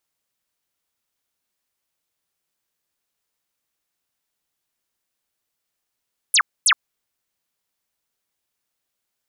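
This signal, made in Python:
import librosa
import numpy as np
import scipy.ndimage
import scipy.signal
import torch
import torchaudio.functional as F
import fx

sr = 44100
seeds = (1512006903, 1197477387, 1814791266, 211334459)

y = fx.laser_zaps(sr, level_db=-12.0, start_hz=12000.0, end_hz=1000.0, length_s=0.07, wave='sine', shots=2, gap_s=0.25)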